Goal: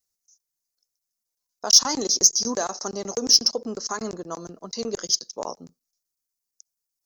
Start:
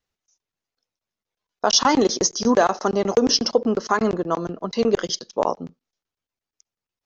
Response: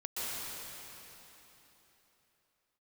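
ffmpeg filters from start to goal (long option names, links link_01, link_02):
-af "aexciter=amount=8:drive=6.2:freq=4600,volume=-10.5dB"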